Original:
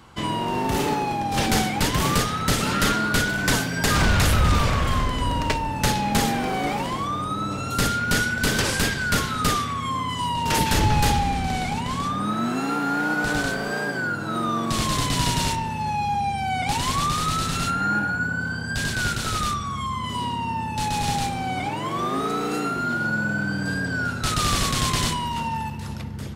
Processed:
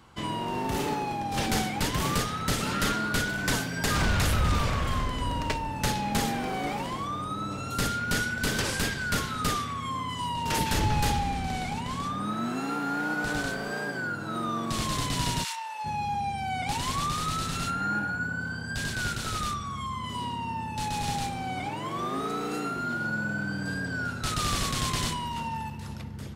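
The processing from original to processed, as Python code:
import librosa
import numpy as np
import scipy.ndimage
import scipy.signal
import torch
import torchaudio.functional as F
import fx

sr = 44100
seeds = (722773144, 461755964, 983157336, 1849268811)

y = fx.highpass(x, sr, hz=fx.line((15.43, 1200.0), (15.84, 510.0)), slope=24, at=(15.43, 15.84), fade=0.02)
y = y * librosa.db_to_amplitude(-6.0)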